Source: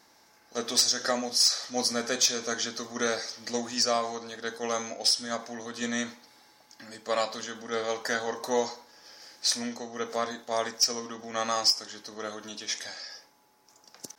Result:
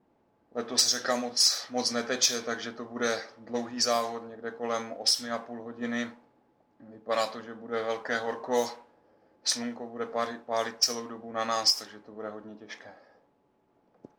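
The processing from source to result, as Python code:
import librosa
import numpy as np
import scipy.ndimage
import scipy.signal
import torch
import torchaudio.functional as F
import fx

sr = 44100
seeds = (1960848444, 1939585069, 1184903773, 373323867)

y = fx.dmg_noise_colour(x, sr, seeds[0], colour='blue', level_db=-45.0)
y = fx.env_lowpass(y, sr, base_hz=350.0, full_db=-21.0)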